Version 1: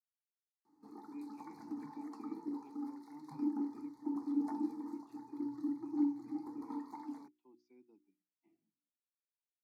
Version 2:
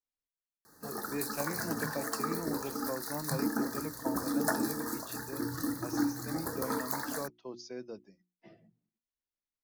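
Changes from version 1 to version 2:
speech +8.5 dB; master: remove vowel filter u

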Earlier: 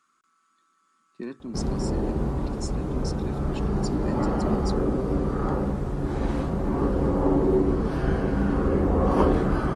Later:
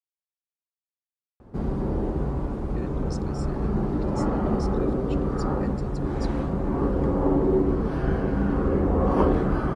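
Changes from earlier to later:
speech: entry +1.55 s; master: add treble shelf 3.6 kHz -9 dB

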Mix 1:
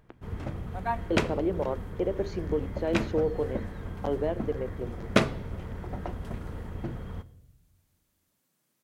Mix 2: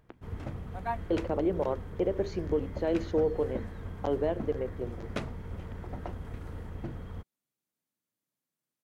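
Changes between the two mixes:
second sound -11.0 dB; reverb: off

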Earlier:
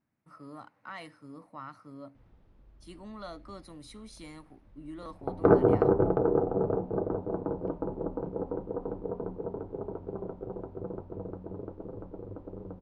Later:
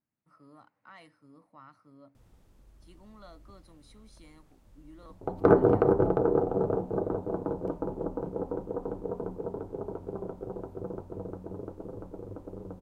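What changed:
speech -9.0 dB; background: remove distance through air 270 m

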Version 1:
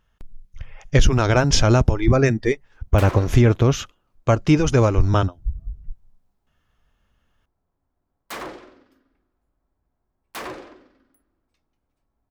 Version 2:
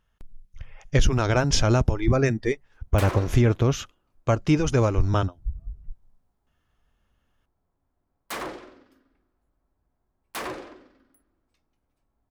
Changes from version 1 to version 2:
speech -4.5 dB; master: add peaking EQ 10 kHz +3 dB 0.59 oct

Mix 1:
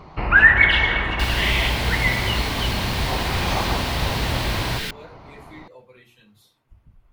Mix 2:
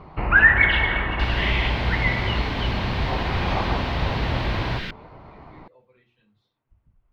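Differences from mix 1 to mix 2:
speech -9.0 dB; second sound: add treble shelf 10 kHz +4.5 dB; master: add distance through air 250 m

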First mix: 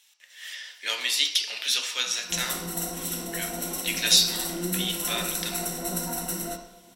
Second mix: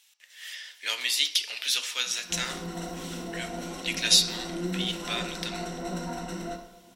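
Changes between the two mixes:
speech: send -6.5 dB; background: add distance through air 150 m

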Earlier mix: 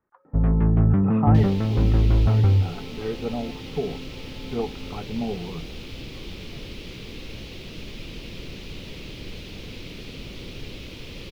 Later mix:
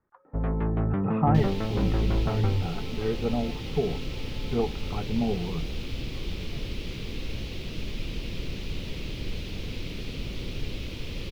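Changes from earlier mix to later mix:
first sound: add tone controls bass -14 dB, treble +6 dB; master: add bass shelf 120 Hz +7 dB

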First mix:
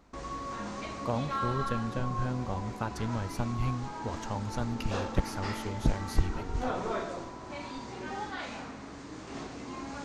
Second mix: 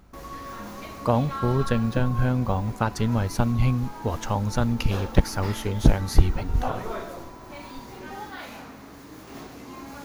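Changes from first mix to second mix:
speech +10.0 dB; background: remove steep low-pass 8.7 kHz 96 dB/octave

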